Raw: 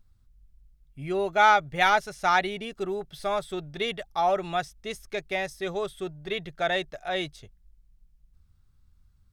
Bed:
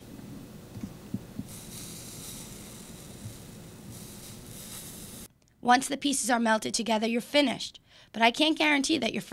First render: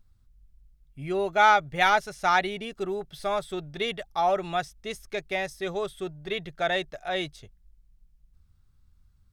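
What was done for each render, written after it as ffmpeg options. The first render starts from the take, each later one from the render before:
-af anull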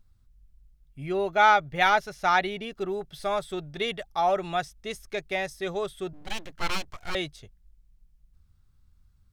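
-filter_complex "[0:a]asettb=1/sr,asplit=3[s0][s1][s2];[s0]atrim=end=1.064[s3];[s1]atrim=start=1.06:end=2.94,asetpts=PTS-STARTPTS,afade=t=in:d=0.004:c=qsin,afade=t=out:st=1.876:d=0.004:c=qsin,equalizer=f=8400:w=1.6:g=-7[s4];[s2]atrim=start=2.936[s5];[s3][s4]acrossfade=d=0.004:c1=hsin:c2=qsin[s6];[s6][s5]acrossfade=d=0.004:c1=qsin:c2=hsin,asettb=1/sr,asplit=3[s7][s8][s9];[s7]atrim=end=6.134[s10];[s8]atrim=start=6.13:end=7.15,asetpts=PTS-STARTPTS,afade=t=in:d=0.004:c=qsin,afade=t=out:st=1.016:d=0.004:c=qsin,aeval=exprs='abs(val(0))':c=same[s11];[s9]atrim=start=7.146[s12];[s10][s11]acrossfade=d=0.004:c1=hsin:c2=qsin[s13];[s13][s12]acrossfade=d=0.004:c1=qsin:c2=hsin"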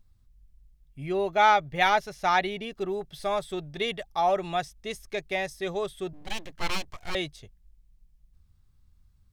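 -af "equalizer=f=1400:t=o:w=0.2:g=-7"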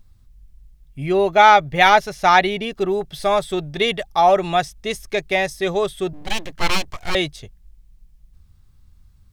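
-af "volume=3.16,alimiter=limit=0.891:level=0:latency=1"

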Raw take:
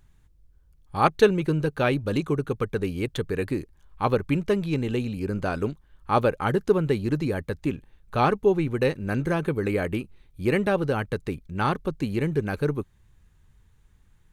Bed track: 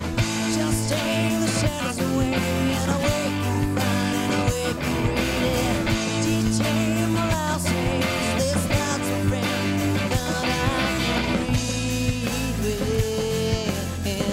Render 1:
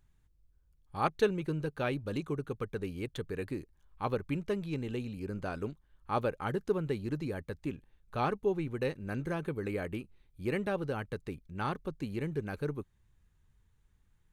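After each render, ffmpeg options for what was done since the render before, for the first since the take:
-af "volume=0.316"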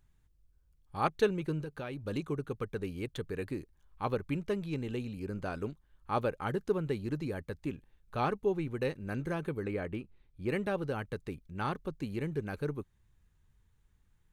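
-filter_complex "[0:a]asettb=1/sr,asplit=3[s0][s1][s2];[s0]atrim=end=1.624[s3];[s1]atrim=start=1.62:end=2.06,asetpts=PTS-STARTPTS,afade=t=in:d=0.004:c=qsin,afade=t=out:st=0.436:d=0.004:c=qsin,acompressor=threshold=0.0158:ratio=5:attack=3.2:release=140:knee=1:detection=peak[s4];[s2]atrim=start=2.056[s5];[s3][s4]acrossfade=d=0.004:c1=hsin:c2=qsin[s6];[s6][s5]acrossfade=d=0.004:c1=qsin:c2=hsin,asettb=1/sr,asplit=3[s7][s8][s9];[s7]atrim=end=9.634[s10];[s8]atrim=start=9.63:end=10.49,asetpts=PTS-STARTPTS,afade=t=in:d=0.004:c=qsin,afade=t=out:st=0.856:d=0.004:c=qsin,aemphasis=mode=reproduction:type=50kf[s11];[s9]atrim=start=10.486[s12];[s10][s11]acrossfade=d=0.004:c1=hsin:c2=qsin[s13];[s13][s12]acrossfade=d=0.004:c1=qsin:c2=hsin"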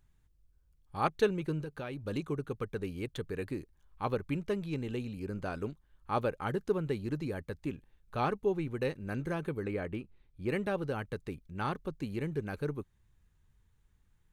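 -af anull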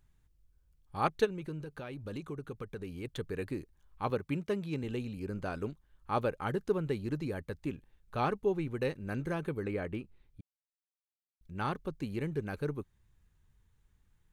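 -filter_complex "[0:a]asplit=3[s0][s1][s2];[s0]afade=t=out:st=1.24:d=0.02[s3];[s1]acompressor=threshold=0.01:ratio=2:attack=3.2:release=140:knee=1:detection=peak,afade=t=in:st=1.24:d=0.02,afade=t=out:st=3.04:d=0.02[s4];[s2]afade=t=in:st=3.04:d=0.02[s5];[s3][s4][s5]amix=inputs=3:normalize=0,asettb=1/sr,asplit=3[s6][s7][s8];[s6]atrim=end=4.104[s9];[s7]atrim=start=4.1:end=4.84,asetpts=PTS-STARTPTS,afade=t=in:d=0.004:c=qsin,afade=t=out:st=0.736:d=0.004:c=qsin,highpass=86[s10];[s8]atrim=start=4.836[s11];[s9][s10]acrossfade=d=0.004:c1=hsin:c2=qsin[s12];[s12][s11]acrossfade=d=0.004:c1=qsin:c2=hsin,asplit=3[s13][s14][s15];[s13]atrim=end=10.41,asetpts=PTS-STARTPTS,afade=t=out:st=10.406:d=0.004:c=hsin[s16];[s14]atrim=start=10.41:end=11.41,asetpts=PTS-STARTPTS,volume=0[s17];[s15]atrim=start=11.41,asetpts=PTS-STARTPTS,afade=t=in:d=0.004:c=hsin[s18];[s16][s17][s18]concat=n=3:v=0:a=1"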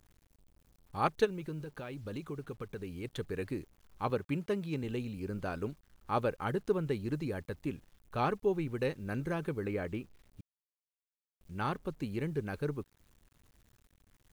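-af "acrusher=bits=10:mix=0:aa=0.000001"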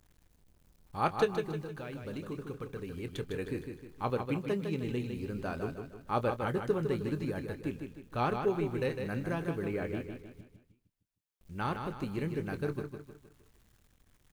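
-filter_complex "[0:a]asplit=2[s0][s1];[s1]adelay=25,volume=0.224[s2];[s0][s2]amix=inputs=2:normalize=0,aecho=1:1:155|310|465|620|775:0.473|0.203|0.0875|0.0376|0.0162"

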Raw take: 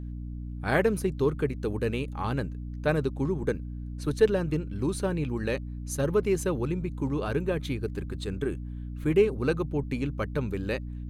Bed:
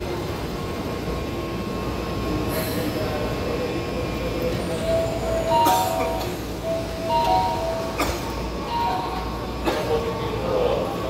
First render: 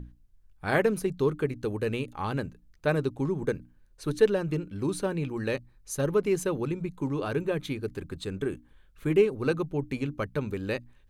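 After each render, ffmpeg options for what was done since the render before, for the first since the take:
-af "bandreject=f=60:t=h:w=6,bandreject=f=120:t=h:w=6,bandreject=f=180:t=h:w=6,bandreject=f=240:t=h:w=6,bandreject=f=300:t=h:w=6"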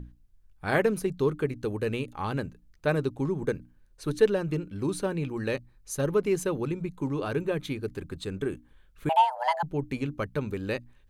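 -filter_complex "[0:a]asettb=1/sr,asplit=3[s0][s1][s2];[s0]atrim=end=9.094[s3];[s1]atrim=start=9.09:end=9.63,asetpts=PTS-STARTPTS,afade=t=in:d=0.004:c=qsin,afade=t=out:st=0.536:d=0.004:c=qsin,afreqshift=490[s4];[s2]atrim=start=9.626[s5];[s3][s4]acrossfade=d=0.004:c1=hsin:c2=qsin[s6];[s6][s5]acrossfade=d=0.004:c1=qsin:c2=hsin"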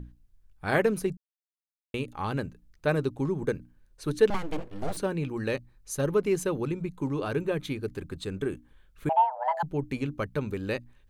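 -filter_complex "[0:a]asettb=1/sr,asplit=3[s0][s1][s2];[s0]atrim=end=4.304[s3];[s1]atrim=start=4.3:end=4.97,asetpts=PTS-STARTPTS,afade=t=in:d=0.004:c=qsin,afade=t=out:st=0.666:d=0.004:c=qsin,aeval=exprs='abs(val(0))':c=same[s4];[s2]atrim=start=4.966[s5];[s3][s4]acrossfade=d=0.004:c1=hsin:c2=qsin[s6];[s6][s5]acrossfade=d=0.004:c1=qsin:c2=hsin,asplit=3[s7][s8][s9];[s7]afade=t=out:st=9.08:d=0.02[s10];[s8]lowpass=1200,afade=t=in:st=9.08:d=0.02,afade=t=out:st=9.55:d=0.02[s11];[s9]afade=t=in:st=9.55:d=0.02[s12];[s10][s11][s12]amix=inputs=3:normalize=0,asplit=3[s13][s14][s15];[s13]atrim=end=1.17,asetpts=PTS-STARTPTS,afade=t=out:st=1.166:d=0.004:c=hsin[s16];[s14]atrim=start=1.17:end=1.94,asetpts=PTS-STARTPTS,volume=0[s17];[s15]atrim=start=1.94,asetpts=PTS-STARTPTS,afade=t=in:d=0.004:c=hsin[s18];[s16][s17][s18]concat=n=3:v=0:a=1"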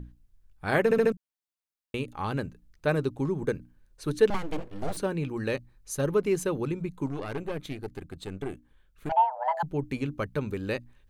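-filter_complex "[0:a]asettb=1/sr,asplit=3[s0][s1][s2];[s0]atrim=end=7.064[s3];[s1]atrim=start=7.06:end=9.12,asetpts=PTS-STARTPTS,afade=t=in:d=0.004:c=qsin,afade=t=out:st=2.056:d=0.004:c=qsin,aeval=exprs='(tanh(22.4*val(0)+0.75)-tanh(0.75))/22.4':c=same[s4];[s2]atrim=start=9.116[s5];[s3][s4]acrossfade=d=0.004:c1=hsin:c2=qsin[s6];[s6][s5]acrossfade=d=0.004:c1=qsin:c2=hsin,asplit=5[s7][s8][s9][s10][s11];[s7]atrim=end=0.912[s12];[s8]atrim=start=0.838:end=0.912[s13];[s9]atrim=start=0.838:end=0.912[s14];[s10]atrim=start=0.838:end=0.912[s15];[s11]atrim=start=1.118[s16];[s12][s13]acrossfade=d=0.004:c1=hsin:c2=hsin[s17];[s17][s14]acrossfade=d=0.004:c1=hsin:c2=hsin[s18];[s18][s15]acrossfade=d=0.004:c1=hsin:c2=hsin[s19];[s19][s16]acrossfade=d=0.004:c1=hsin:c2=hsin"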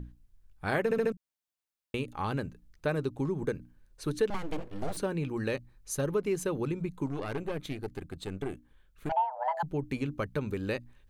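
-af "acompressor=threshold=0.0355:ratio=2"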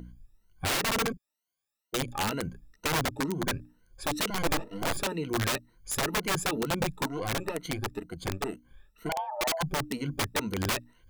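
-af "afftfilt=real='re*pow(10,19/40*sin(2*PI*(1.9*log(max(b,1)*sr/1024/100)/log(2)-(2.1)*(pts-256)/sr)))':imag='im*pow(10,19/40*sin(2*PI*(1.9*log(max(b,1)*sr/1024/100)/log(2)-(2.1)*(pts-256)/sr)))':win_size=1024:overlap=0.75,aeval=exprs='(mod(13.3*val(0)+1,2)-1)/13.3':c=same"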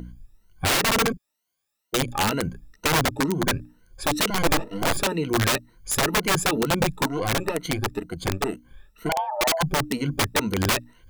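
-af "volume=2.24"

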